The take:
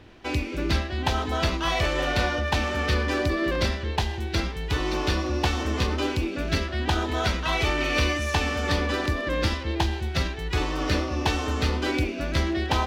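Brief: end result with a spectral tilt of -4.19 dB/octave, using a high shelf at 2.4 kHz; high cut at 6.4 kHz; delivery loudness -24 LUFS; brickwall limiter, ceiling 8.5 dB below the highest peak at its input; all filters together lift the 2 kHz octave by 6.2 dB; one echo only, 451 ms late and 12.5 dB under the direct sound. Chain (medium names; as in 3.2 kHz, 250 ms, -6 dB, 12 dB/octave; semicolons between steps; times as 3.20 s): low-pass 6.4 kHz; peaking EQ 2 kHz +4 dB; treble shelf 2.4 kHz +7.5 dB; peak limiter -14.5 dBFS; delay 451 ms -12.5 dB; trim +0.5 dB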